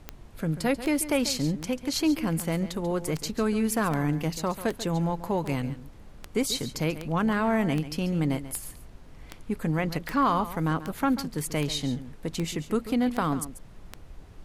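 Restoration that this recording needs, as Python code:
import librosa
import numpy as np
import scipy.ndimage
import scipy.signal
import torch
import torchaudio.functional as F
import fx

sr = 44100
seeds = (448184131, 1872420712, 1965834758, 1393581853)

y = fx.fix_declick_ar(x, sr, threshold=10.0)
y = fx.noise_reduce(y, sr, print_start_s=8.9, print_end_s=9.4, reduce_db=28.0)
y = fx.fix_echo_inverse(y, sr, delay_ms=139, level_db=-13.5)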